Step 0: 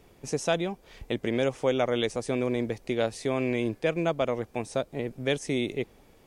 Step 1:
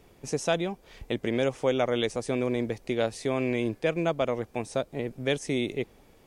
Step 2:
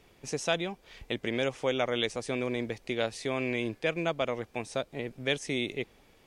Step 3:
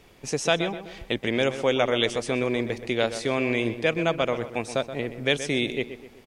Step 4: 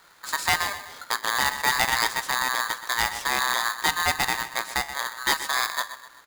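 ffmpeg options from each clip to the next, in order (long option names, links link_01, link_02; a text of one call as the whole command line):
ffmpeg -i in.wav -af anull out.wav
ffmpeg -i in.wav -af "equalizer=frequency=2900:width=0.48:gain=7,volume=-5dB" out.wav
ffmpeg -i in.wav -filter_complex "[0:a]asplit=2[link_01][link_02];[link_02]adelay=126,lowpass=frequency=2700:poles=1,volume=-11dB,asplit=2[link_03][link_04];[link_04]adelay=126,lowpass=frequency=2700:poles=1,volume=0.47,asplit=2[link_05][link_06];[link_06]adelay=126,lowpass=frequency=2700:poles=1,volume=0.47,asplit=2[link_07][link_08];[link_08]adelay=126,lowpass=frequency=2700:poles=1,volume=0.47,asplit=2[link_09][link_10];[link_10]adelay=126,lowpass=frequency=2700:poles=1,volume=0.47[link_11];[link_01][link_03][link_05][link_07][link_09][link_11]amix=inputs=6:normalize=0,volume=6dB" out.wav
ffmpeg -i in.wav -af "flanger=delay=8.7:depth=9.4:regen=-78:speed=0.36:shape=sinusoidal,aeval=exprs='0.266*(cos(1*acos(clip(val(0)/0.266,-1,1)))-cos(1*PI/2))+0.0168*(cos(6*acos(clip(val(0)/0.266,-1,1)))-cos(6*PI/2))':channel_layout=same,aeval=exprs='val(0)*sgn(sin(2*PI*1400*n/s))':channel_layout=same,volume=3.5dB" out.wav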